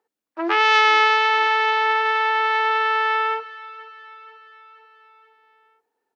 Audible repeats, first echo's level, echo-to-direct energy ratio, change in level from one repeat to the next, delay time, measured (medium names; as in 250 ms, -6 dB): 4, -19.0 dB, -17.0 dB, -4.5 dB, 481 ms